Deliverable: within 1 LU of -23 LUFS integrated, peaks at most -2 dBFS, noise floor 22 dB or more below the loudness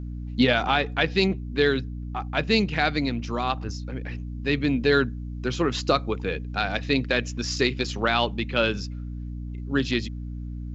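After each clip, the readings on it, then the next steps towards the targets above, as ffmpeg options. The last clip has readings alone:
hum 60 Hz; harmonics up to 300 Hz; hum level -31 dBFS; loudness -25.0 LUFS; peak -7.0 dBFS; loudness target -23.0 LUFS
-> -af "bandreject=f=60:t=h:w=6,bandreject=f=120:t=h:w=6,bandreject=f=180:t=h:w=6,bandreject=f=240:t=h:w=6,bandreject=f=300:t=h:w=6"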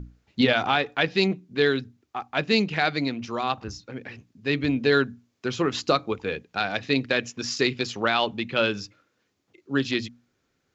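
hum none; loudness -25.0 LUFS; peak -8.0 dBFS; loudness target -23.0 LUFS
-> -af "volume=2dB"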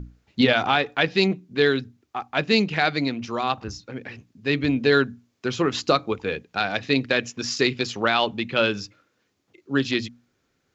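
loudness -23.0 LUFS; peak -6.0 dBFS; noise floor -72 dBFS

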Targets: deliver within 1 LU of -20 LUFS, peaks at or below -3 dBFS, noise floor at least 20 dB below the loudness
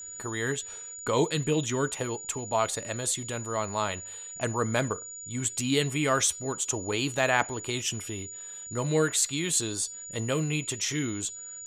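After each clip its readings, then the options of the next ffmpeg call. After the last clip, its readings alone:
steady tone 6900 Hz; tone level -39 dBFS; loudness -29.0 LUFS; peak -8.0 dBFS; loudness target -20.0 LUFS
-> -af "bandreject=f=6.9k:w=30"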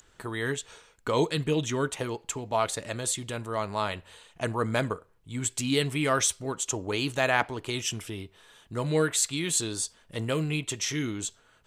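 steady tone none; loudness -29.0 LUFS; peak -8.0 dBFS; loudness target -20.0 LUFS
-> -af "volume=9dB,alimiter=limit=-3dB:level=0:latency=1"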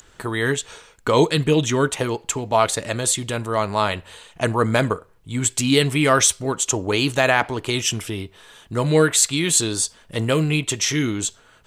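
loudness -20.5 LUFS; peak -3.0 dBFS; noise floor -53 dBFS

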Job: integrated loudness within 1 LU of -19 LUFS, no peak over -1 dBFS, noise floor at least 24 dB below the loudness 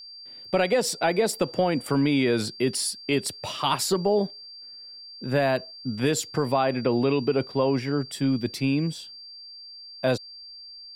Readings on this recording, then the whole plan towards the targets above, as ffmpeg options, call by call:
steady tone 4700 Hz; tone level -41 dBFS; loudness -25.0 LUFS; peak -11.0 dBFS; loudness target -19.0 LUFS
-> -af "bandreject=f=4.7k:w=30"
-af "volume=6dB"

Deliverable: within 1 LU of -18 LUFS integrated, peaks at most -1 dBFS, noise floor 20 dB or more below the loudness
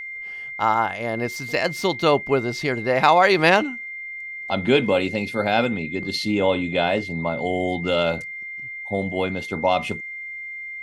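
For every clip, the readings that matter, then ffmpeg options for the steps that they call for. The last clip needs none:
steady tone 2100 Hz; tone level -31 dBFS; loudness -22.5 LUFS; peak -2.5 dBFS; loudness target -18.0 LUFS
-> -af "bandreject=f=2.1k:w=30"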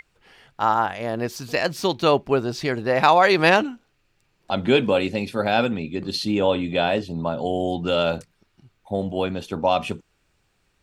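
steady tone none; loudness -22.0 LUFS; peak -2.5 dBFS; loudness target -18.0 LUFS
-> -af "volume=4dB,alimiter=limit=-1dB:level=0:latency=1"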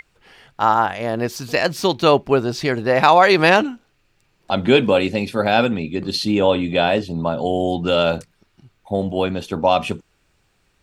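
loudness -18.0 LUFS; peak -1.0 dBFS; noise floor -64 dBFS

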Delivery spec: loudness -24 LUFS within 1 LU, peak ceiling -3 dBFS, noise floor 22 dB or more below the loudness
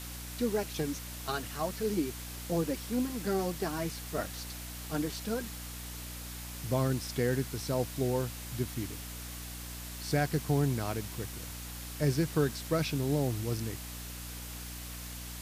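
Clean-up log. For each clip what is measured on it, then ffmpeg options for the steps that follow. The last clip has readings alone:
hum 60 Hz; harmonics up to 300 Hz; hum level -42 dBFS; noise floor -42 dBFS; noise floor target -56 dBFS; loudness -34.0 LUFS; peak -16.5 dBFS; loudness target -24.0 LUFS
-> -af "bandreject=f=60:t=h:w=4,bandreject=f=120:t=h:w=4,bandreject=f=180:t=h:w=4,bandreject=f=240:t=h:w=4,bandreject=f=300:t=h:w=4"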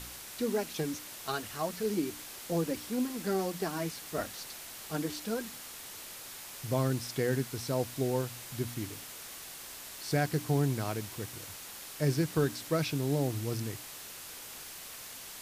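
hum none; noise floor -46 dBFS; noise floor target -57 dBFS
-> -af "afftdn=nr=11:nf=-46"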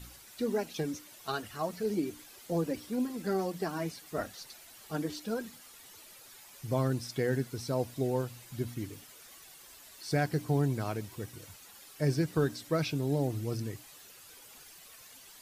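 noise floor -54 dBFS; noise floor target -56 dBFS
-> -af "afftdn=nr=6:nf=-54"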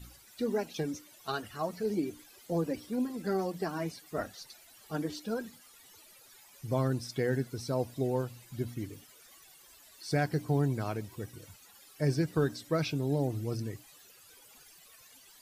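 noise floor -58 dBFS; loudness -34.0 LUFS; peak -17.0 dBFS; loudness target -24.0 LUFS
-> -af "volume=10dB"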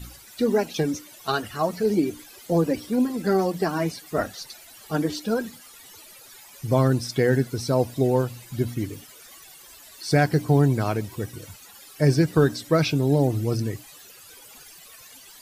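loudness -24.0 LUFS; peak -7.0 dBFS; noise floor -48 dBFS

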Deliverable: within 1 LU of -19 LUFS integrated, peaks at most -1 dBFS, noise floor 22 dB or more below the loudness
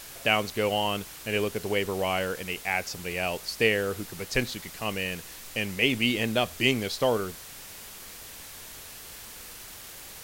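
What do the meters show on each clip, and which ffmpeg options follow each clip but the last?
noise floor -44 dBFS; noise floor target -50 dBFS; loudness -28.0 LUFS; peak -7.0 dBFS; loudness target -19.0 LUFS
-> -af "afftdn=nr=6:nf=-44"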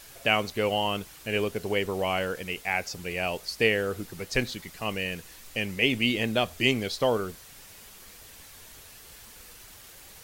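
noise floor -49 dBFS; noise floor target -50 dBFS
-> -af "afftdn=nr=6:nf=-49"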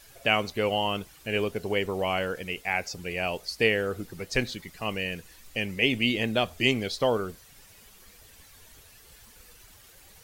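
noise floor -54 dBFS; loudness -28.0 LUFS; peak -7.0 dBFS; loudness target -19.0 LUFS
-> -af "volume=9dB,alimiter=limit=-1dB:level=0:latency=1"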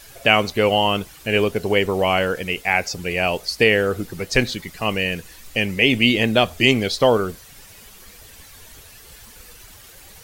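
loudness -19.5 LUFS; peak -1.0 dBFS; noise floor -45 dBFS

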